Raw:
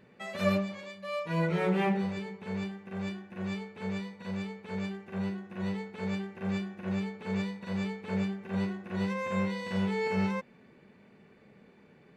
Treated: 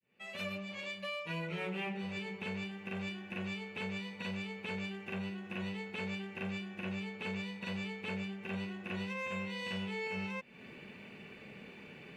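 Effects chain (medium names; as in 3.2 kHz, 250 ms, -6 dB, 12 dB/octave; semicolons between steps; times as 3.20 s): fade-in on the opening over 1.76 s; peaking EQ 2.7 kHz +13 dB 0.59 oct; compression 6:1, threshold -43 dBFS, peak gain reduction 18.5 dB; treble shelf 4.7 kHz +5 dB; trim +5 dB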